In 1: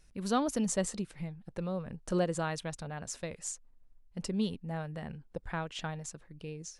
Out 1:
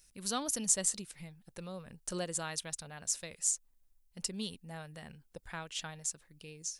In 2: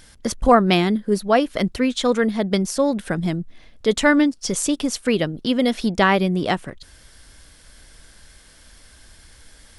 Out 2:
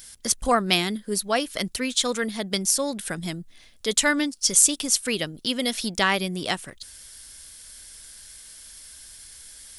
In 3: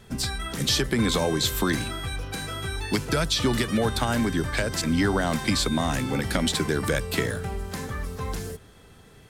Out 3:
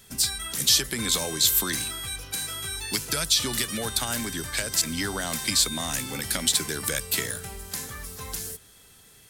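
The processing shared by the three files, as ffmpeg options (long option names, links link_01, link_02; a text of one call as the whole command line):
ffmpeg -i in.wav -af "crystalizer=i=7:c=0,volume=-9.5dB" out.wav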